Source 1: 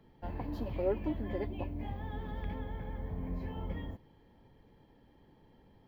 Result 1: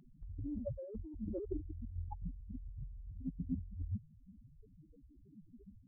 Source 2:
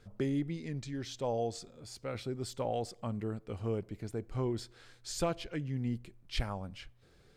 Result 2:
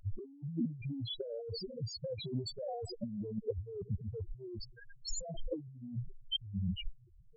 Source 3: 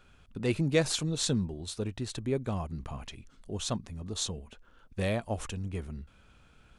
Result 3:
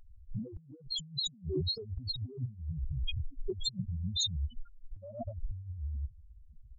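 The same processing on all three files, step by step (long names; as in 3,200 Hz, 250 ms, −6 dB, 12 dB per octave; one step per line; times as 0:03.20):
spectral peaks only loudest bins 2
compressor whose output falls as the input rises −49 dBFS, ratio −1
noise reduction from a noise print of the clip's start 9 dB
level +11 dB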